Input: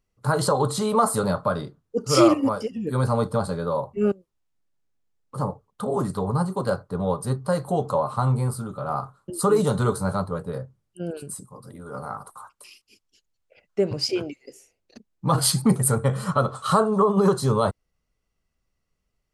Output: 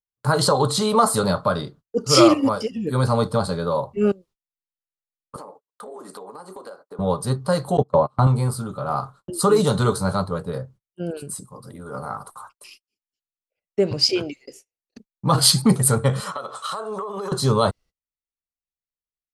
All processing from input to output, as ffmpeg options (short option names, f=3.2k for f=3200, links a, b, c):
-filter_complex "[0:a]asettb=1/sr,asplit=3[a][b][c];[a]atrim=end=5.364[d];[b]atrim=start=5.36:end=6.99,asetpts=PTS-STARTPTS,afade=t=in:d=0.004:c=qsin,afade=t=out:st=1.626:d=0.004:c=qsin,highpass=f=300:w=0.5412,highpass=f=300:w=1.3066,acompressor=threshold=-37dB:ratio=10:attack=3.2:release=140:knee=1:detection=peak[e];[c]atrim=start=6.986[f];[d][e]acrossfade=d=0.004:c1=hsin:c2=qsin[g];[g][f]acrossfade=d=0.004:c1=qsin:c2=hsin,asettb=1/sr,asplit=3[h][i][j];[h]atrim=end=7.774[k];[i]atrim=start=7.77:end=8.27,asetpts=PTS-STARTPTS,afade=t=in:d=0.004:c=qsin,afade=t=out:st=0.496:d=0.004:c=qsin,lowpass=9.9k,agate=range=-31dB:threshold=-25dB:ratio=16:release=100:detection=peak,tiltshelf=f=1.2k:g=6[l];[j]atrim=start=8.266[m];[k][l]acrossfade=d=0.004:c1=hsin:c2=qsin[n];[n][m]acrossfade=d=0.004:c1=qsin:c2=hsin,asettb=1/sr,asplit=3[o][p][q];[o]atrim=end=16.204[r];[p]atrim=start=16.2:end=17.32,asetpts=PTS-STARTPTS,afade=t=in:d=0.004:c=qsin,afade=t=out:st=1.116:d=0.004:c=qsin,highpass=450,bandreject=f=4.5k:w=11,acompressor=threshold=-28dB:ratio=16:attack=3.2:release=140:knee=1:detection=peak[s];[q]atrim=start=17.316[t];[r][s]acrossfade=d=0.004:c1=hsin:c2=qsin[u];[u][t]acrossfade=d=0.004:c1=qsin:c2=hsin,agate=range=-31dB:threshold=-48dB:ratio=16:detection=peak,adynamicequalizer=threshold=0.00562:dfrequency=4100:dqfactor=0.99:tfrequency=4100:tqfactor=0.99:attack=5:release=100:ratio=0.375:range=3.5:mode=boostabove:tftype=bell,volume=2.5dB"